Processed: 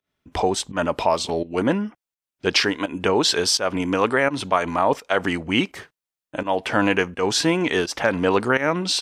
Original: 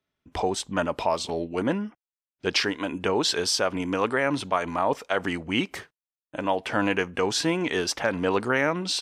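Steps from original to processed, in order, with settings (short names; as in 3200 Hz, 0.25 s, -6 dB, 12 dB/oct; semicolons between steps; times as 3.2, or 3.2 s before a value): pump 84 bpm, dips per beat 1, -15 dB, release 0.178 s; gain +5 dB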